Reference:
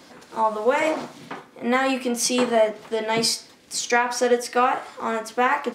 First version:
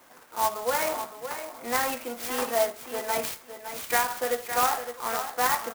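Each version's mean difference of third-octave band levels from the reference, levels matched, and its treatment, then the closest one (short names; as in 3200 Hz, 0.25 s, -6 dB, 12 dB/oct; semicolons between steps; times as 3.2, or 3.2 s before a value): 9.0 dB: three-band isolator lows -13 dB, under 590 Hz, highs -12 dB, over 3300 Hz; on a send: feedback echo 0.562 s, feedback 18%, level -9.5 dB; on the sum: clock jitter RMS 0.07 ms; gain -2.5 dB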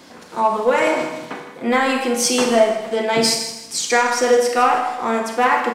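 4.0 dB: in parallel at -6.5 dB: hard clip -15.5 dBFS, distortion -14 dB; on the sum: feedback echo 0.159 s, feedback 34%, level -12 dB; Schroeder reverb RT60 0.77 s, combs from 31 ms, DRR 4.5 dB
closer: second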